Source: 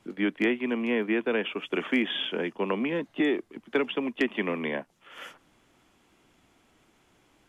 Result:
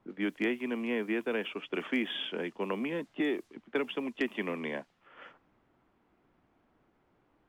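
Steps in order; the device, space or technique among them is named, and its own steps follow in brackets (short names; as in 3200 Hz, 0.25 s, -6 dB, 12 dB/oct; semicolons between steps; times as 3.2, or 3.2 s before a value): cassette deck with a dynamic noise filter (white noise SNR 32 dB; low-pass opened by the level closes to 1300 Hz, open at -24 dBFS); gain -5.5 dB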